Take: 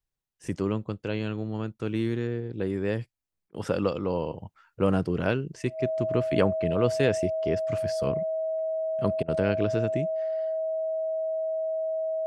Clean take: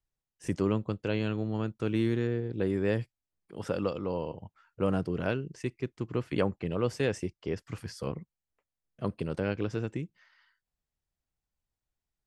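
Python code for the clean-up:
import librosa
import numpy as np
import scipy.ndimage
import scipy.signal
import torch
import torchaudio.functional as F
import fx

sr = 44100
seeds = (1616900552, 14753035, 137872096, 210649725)

y = fx.notch(x, sr, hz=640.0, q=30.0)
y = fx.fix_interpolate(y, sr, at_s=(3.49, 9.23), length_ms=51.0)
y = fx.gain(y, sr, db=fx.steps((0.0, 0.0), (3.52, -4.5)))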